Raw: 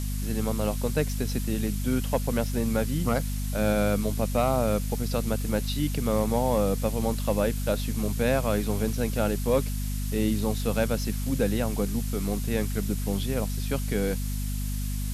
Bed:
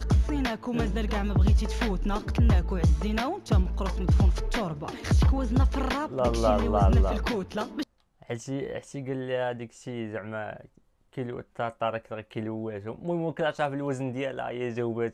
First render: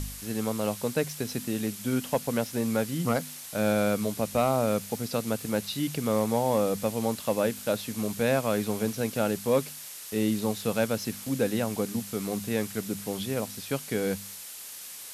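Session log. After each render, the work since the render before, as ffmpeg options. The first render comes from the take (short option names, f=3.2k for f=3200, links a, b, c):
-af "bandreject=f=50:t=h:w=4,bandreject=f=100:t=h:w=4,bandreject=f=150:t=h:w=4,bandreject=f=200:t=h:w=4,bandreject=f=250:t=h:w=4"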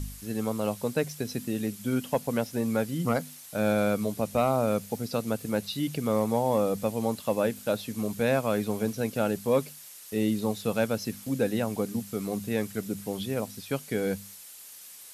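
-af "afftdn=nr=7:nf=-42"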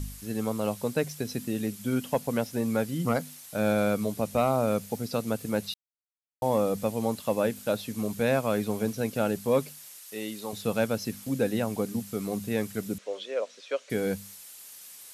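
-filter_complex "[0:a]asettb=1/sr,asplit=3[a][b][c];[a]atrim=end=9.994[d];[b]atrim=start=9.99:end=10.53,asetpts=PTS-STARTPTS,afade=t=in:d=0.004:c=qsin,afade=t=out:st=0.536:d=0.004:c=qsin,highpass=f=860:p=1[e];[c]atrim=start=10.526[f];[d][e]acrossfade=d=0.004:c1=hsin:c2=qsin[g];[g][f]acrossfade=d=0.004:c1=qsin:c2=hsin,asettb=1/sr,asplit=3[h][i][j];[h]atrim=end=12.984[k];[i]atrim=start=12.98:end=13.9,asetpts=PTS-STARTPTS,afade=t=in:d=0.004:c=qsin,afade=t=out:st=0.916:d=0.004:c=qsin,highpass=f=430:w=0.5412,highpass=f=430:w=1.3066,equalizer=f=550:t=q:w=4:g=8,equalizer=f=820:t=q:w=4:g=-9,equalizer=f=4.8k:t=q:w=4:g=-6,lowpass=f=6k:w=0.5412,lowpass=f=6k:w=1.3066[l];[j]atrim=start=13.896[m];[k][l]acrossfade=d=0.004:c1=hsin:c2=qsin[n];[n][m]acrossfade=d=0.004:c1=qsin:c2=hsin,asplit=3[o][p][q];[o]atrim=end=5.74,asetpts=PTS-STARTPTS,afade=t=out:st=5.736:d=0.004:c=hsin[r];[p]atrim=start=5.74:end=6.42,asetpts=PTS-STARTPTS,volume=0[s];[q]atrim=start=6.42,asetpts=PTS-STARTPTS,afade=t=in:d=0.004:c=hsin[t];[r][s][t]concat=n=3:v=0:a=1"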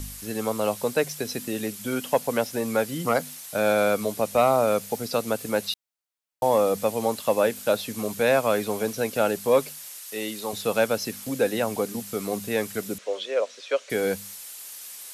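-filter_complex "[0:a]acrossover=split=350[a][b];[a]alimiter=level_in=4.5dB:limit=-24dB:level=0:latency=1:release=180,volume=-4.5dB[c];[b]acontrast=64[d];[c][d]amix=inputs=2:normalize=0"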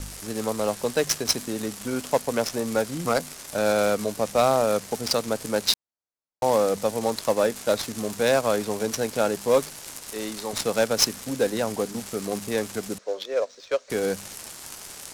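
-af "aexciter=amount=6.1:drive=7.6:freq=4.3k,adynamicsmooth=sensitivity=1.5:basefreq=1.4k"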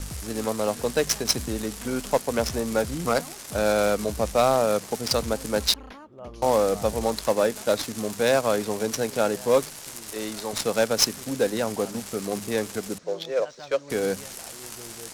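-filter_complex "[1:a]volume=-15.5dB[a];[0:a][a]amix=inputs=2:normalize=0"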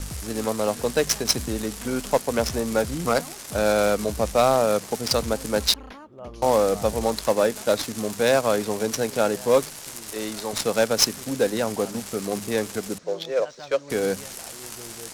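-af "volume=1.5dB"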